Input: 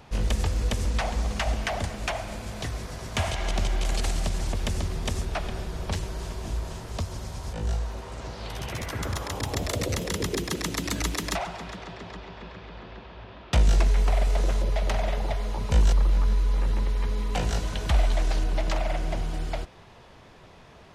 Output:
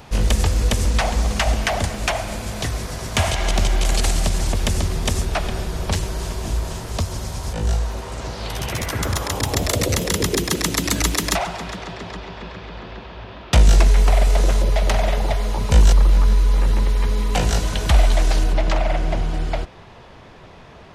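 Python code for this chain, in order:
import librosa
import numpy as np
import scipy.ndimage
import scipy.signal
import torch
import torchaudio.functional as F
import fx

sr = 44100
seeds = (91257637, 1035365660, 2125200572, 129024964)

y = fx.high_shelf(x, sr, hz=6700.0, db=fx.steps((0.0, 6.0), (18.52, -8.5)))
y = y * librosa.db_to_amplitude(7.5)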